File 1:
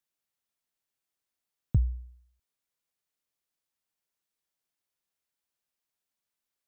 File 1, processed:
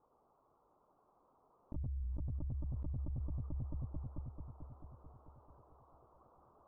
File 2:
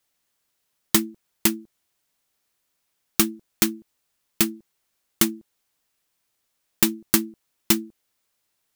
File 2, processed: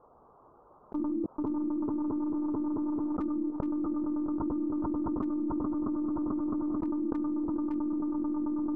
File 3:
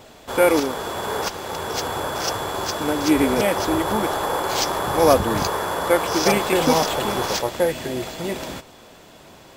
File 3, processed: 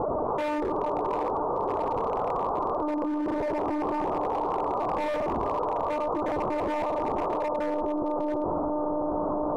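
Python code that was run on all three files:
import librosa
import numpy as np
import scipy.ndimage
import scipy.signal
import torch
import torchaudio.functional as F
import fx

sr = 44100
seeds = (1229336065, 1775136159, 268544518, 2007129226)

p1 = 10.0 ** (-6.5 / 20.0) * np.tanh(x / 10.0 ** (-6.5 / 20.0))
p2 = scipy.signal.sosfilt(scipy.signal.butter(12, 1200.0, 'lowpass', fs=sr, output='sos'), p1)
p3 = fx.low_shelf(p2, sr, hz=71.0, db=-9.0)
p4 = p3 + 10.0 ** (-6.0 / 20.0) * np.pad(p3, (int(104 * sr / 1000.0), 0))[:len(p3)]
p5 = fx.lpc_monotone(p4, sr, seeds[0], pitch_hz=300.0, order=16)
p6 = p5 + fx.echo_heads(p5, sr, ms=220, heads='second and third', feedback_pct=41, wet_db=-16.5, dry=0)
p7 = fx.rider(p6, sr, range_db=3, speed_s=2.0)
p8 = fx.low_shelf(p7, sr, hz=180.0, db=-9.0)
p9 = np.clip(10.0 ** (18.5 / 20.0) * p8, -1.0, 1.0) / 10.0 ** (18.5 / 20.0)
p10 = fx.env_flatten(p9, sr, amount_pct=100)
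y = p10 * librosa.db_to_amplitude(-8.5)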